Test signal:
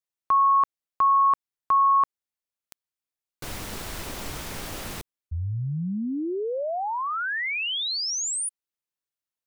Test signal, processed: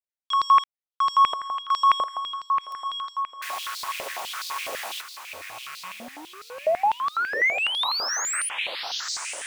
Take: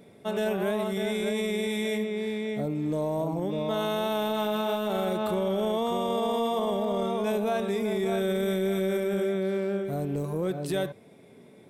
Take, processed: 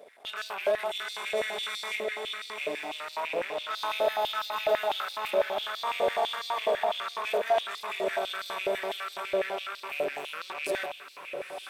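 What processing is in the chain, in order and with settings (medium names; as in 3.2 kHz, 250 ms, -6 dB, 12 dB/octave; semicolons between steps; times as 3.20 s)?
rattle on loud lows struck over -40 dBFS, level -32 dBFS; waveshaping leveller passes 2; echo that smears into a reverb 981 ms, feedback 46%, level -7 dB; step-sequenced high-pass 12 Hz 560–4300 Hz; trim -7.5 dB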